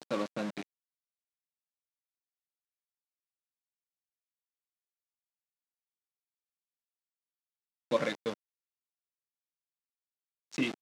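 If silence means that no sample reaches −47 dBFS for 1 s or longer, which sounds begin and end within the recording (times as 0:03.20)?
0:07.91–0:08.34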